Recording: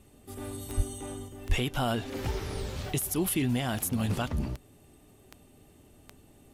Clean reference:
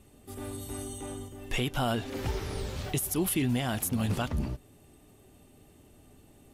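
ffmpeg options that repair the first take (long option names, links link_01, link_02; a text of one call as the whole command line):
ffmpeg -i in.wav -filter_complex "[0:a]adeclick=threshold=4,asplit=3[link_01][link_02][link_03];[link_01]afade=type=out:start_time=0.76:duration=0.02[link_04];[link_02]highpass=frequency=140:width=0.5412,highpass=frequency=140:width=1.3066,afade=type=in:start_time=0.76:duration=0.02,afade=type=out:start_time=0.88:duration=0.02[link_05];[link_03]afade=type=in:start_time=0.88:duration=0.02[link_06];[link_04][link_05][link_06]amix=inputs=3:normalize=0,asplit=3[link_07][link_08][link_09];[link_07]afade=type=out:start_time=1.48:duration=0.02[link_10];[link_08]highpass=frequency=140:width=0.5412,highpass=frequency=140:width=1.3066,afade=type=in:start_time=1.48:duration=0.02,afade=type=out:start_time=1.6:duration=0.02[link_11];[link_09]afade=type=in:start_time=1.6:duration=0.02[link_12];[link_10][link_11][link_12]amix=inputs=3:normalize=0" out.wav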